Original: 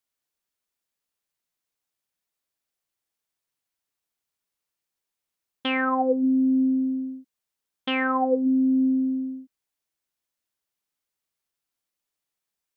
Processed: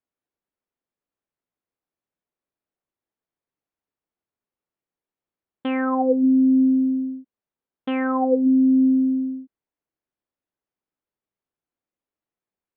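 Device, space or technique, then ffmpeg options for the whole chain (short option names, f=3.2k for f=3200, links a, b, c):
phone in a pocket: -af "lowpass=3.3k,equalizer=f=320:t=o:w=2.1:g=5,highshelf=f=2.1k:g=-12"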